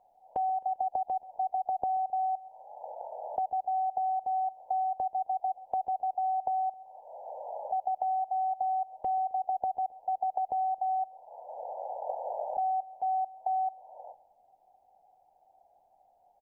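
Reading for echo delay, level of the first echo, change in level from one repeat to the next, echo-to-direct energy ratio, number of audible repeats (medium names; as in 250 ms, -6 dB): 132 ms, -19.0 dB, -6.5 dB, -18.0 dB, 3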